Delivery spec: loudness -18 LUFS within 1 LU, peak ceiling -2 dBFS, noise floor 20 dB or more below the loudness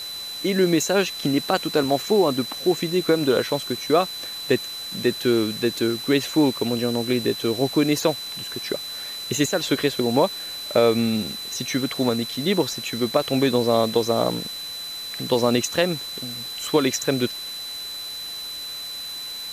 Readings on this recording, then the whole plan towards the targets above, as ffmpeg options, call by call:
steady tone 4000 Hz; tone level -31 dBFS; noise floor -33 dBFS; noise floor target -43 dBFS; loudness -23.0 LUFS; peak -5.5 dBFS; loudness target -18.0 LUFS
-> -af "bandreject=f=4k:w=30"
-af "afftdn=nr=10:nf=-33"
-af "volume=5dB,alimiter=limit=-2dB:level=0:latency=1"

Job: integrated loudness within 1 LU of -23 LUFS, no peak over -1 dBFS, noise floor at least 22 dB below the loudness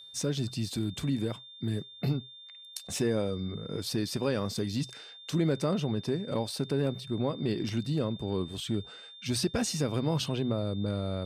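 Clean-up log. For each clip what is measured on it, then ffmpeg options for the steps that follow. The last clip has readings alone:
steady tone 3600 Hz; tone level -47 dBFS; loudness -32.0 LUFS; peak -17.0 dBFS; loudness target -23.0 LUFS
-> -af "bandreject=f=3.6k:w=30"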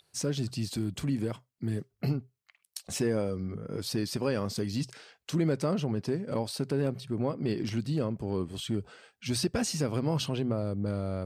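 steady tone none; loudness -32.0 LUFS; peak -17.0 dBFS; loudness target -23.0 LUFS
-> -af "volume=9dB"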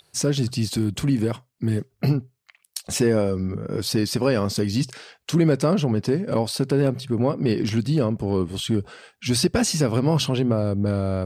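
loudness -23.0 LUFS; peak -8.0 dBFS; noise floor -71 dBFS

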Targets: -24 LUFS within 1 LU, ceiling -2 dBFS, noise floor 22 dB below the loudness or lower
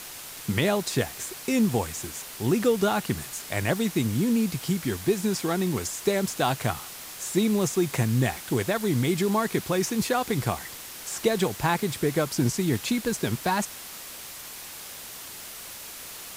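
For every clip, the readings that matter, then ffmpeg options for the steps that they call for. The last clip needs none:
noise floor -41 dBFS; noise floor target -49 dBFS; loudness -26.5 LUFS; peak -10.0 dBFS; loudness target -24.0 LUFS
-> -af "afftdn=nr=8:nf=-41"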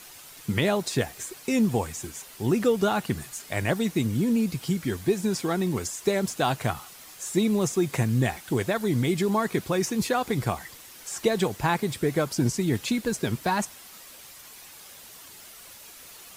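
noise floor -47 dBFS; noise floor target -49 dBFS
-> -af "afftdn=nr=6:nf=-47"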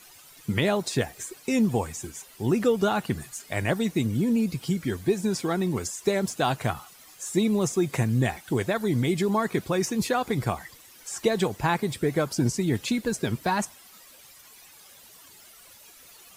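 noise floor -51 dBFS; loudness -26.5 LUFS; peak -10.0 dBFS; loudness target -24.0 LUFS
-> -af "volume=2.5dB"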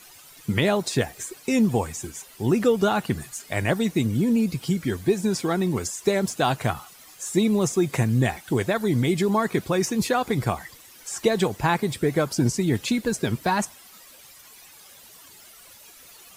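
loudness -24.0 LUFS; peak -7.5 dBFS; noise floor -49 dBFS

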